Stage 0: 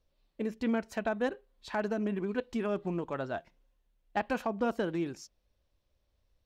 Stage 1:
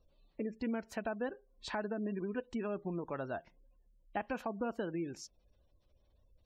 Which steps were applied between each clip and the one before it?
gate on every frequency bin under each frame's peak −30 dB strong
downward compressor 2 to 1, threshold −49 dBFS, peak gain reduction 13 dB
level +5.5 dB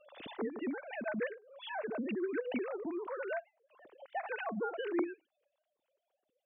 three sine waves on the formant tracks
background raised ahead of every attack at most 71 dB per second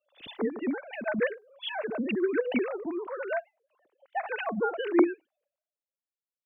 multiband upward and downward expander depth 100%
level +7 dB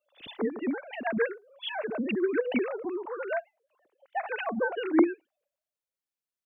wow of a warped record 33 1/3 rpm, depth 160 cents

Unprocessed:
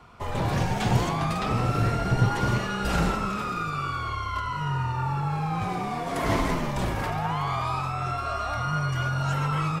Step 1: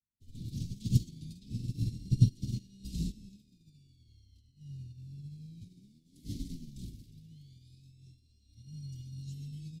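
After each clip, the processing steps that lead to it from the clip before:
elliptic band-stop filter 260–4,000 Hz, stop band 80 dB
expander for the loud parts 2.5 to 1, over −48 dBFS
level +2 dB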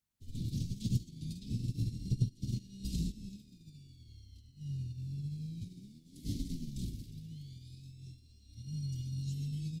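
downward compressor 2.5 to 1, threshold −41 dBFS, peak gain reduction 16 dB
level +6.5 dB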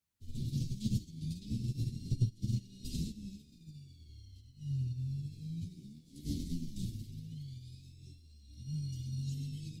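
multi-voice chorus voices 2, 0.41 Hz, delay 11 ms, depth 3.1 ms
level +3 dB

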